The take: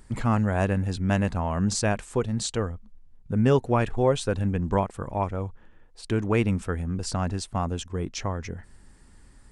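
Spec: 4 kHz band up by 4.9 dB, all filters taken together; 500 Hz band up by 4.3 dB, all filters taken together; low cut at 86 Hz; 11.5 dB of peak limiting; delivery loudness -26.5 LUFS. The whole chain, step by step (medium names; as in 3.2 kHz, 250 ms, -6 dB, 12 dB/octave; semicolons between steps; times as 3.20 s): high-pass 86 Hz; peaking EQ 500 Hz +5 dB; peaking EQ 4 kHz +6 dB; trim +3 dB; peak limiter -15 dBFS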